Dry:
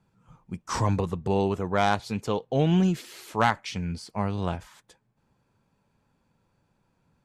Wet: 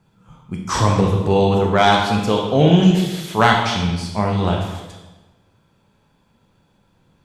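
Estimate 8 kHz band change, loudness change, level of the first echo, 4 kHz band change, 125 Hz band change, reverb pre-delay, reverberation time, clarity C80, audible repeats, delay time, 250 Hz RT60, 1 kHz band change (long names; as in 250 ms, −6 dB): +9.5 dB, +10.0 dB, no echo audible, +14.0 dB, +10.0 dB, 17 ms, 1.1 s, 5.5 dB, no echo audible, no echo audible, 1.3 s, +10.0 dB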